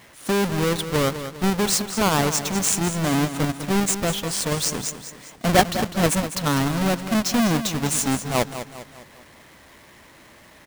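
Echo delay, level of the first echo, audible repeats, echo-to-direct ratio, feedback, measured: 201 ms, −11.0 dB, 4, −10.0 dB, 46%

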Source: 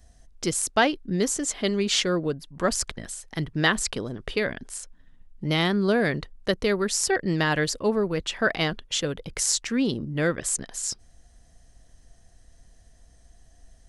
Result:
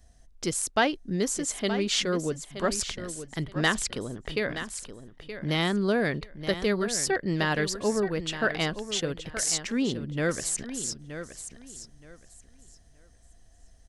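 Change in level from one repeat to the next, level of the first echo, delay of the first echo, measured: −13.0 dB, −11.0 dB, 923 ms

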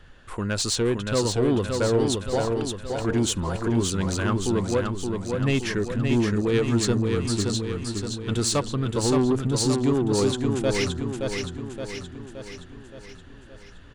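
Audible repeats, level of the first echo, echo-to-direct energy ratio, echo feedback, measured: 6, −4.5 dB, −3.0 dB, 55%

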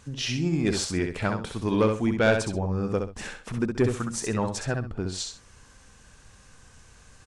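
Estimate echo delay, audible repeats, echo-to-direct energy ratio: 65 ms, 2, −5.0 dB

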